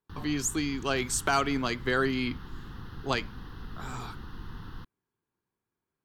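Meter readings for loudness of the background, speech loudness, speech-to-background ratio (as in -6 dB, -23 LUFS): -45.0 LUFS, -29.5 LUFS, 15.5 dB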